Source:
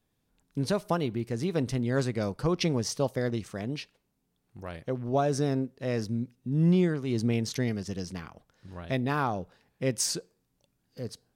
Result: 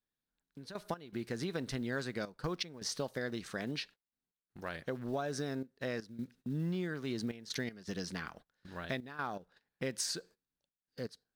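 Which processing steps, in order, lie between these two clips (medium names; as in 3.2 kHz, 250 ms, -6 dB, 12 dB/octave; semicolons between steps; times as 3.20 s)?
block-companded coder 7-bit; gate -52 dBFS, range -17 dB; fifteen-band graphic EQ 100 Hz -10 dB, 1.6 kHz +9 dB, 4 kHz +7 dB; compression 5:1, threshold -32 dBFS, peak gain reduction 10.5 dB; trance gate "xxx.x.xxx" 80 bpm -12 dB; trim -2 dB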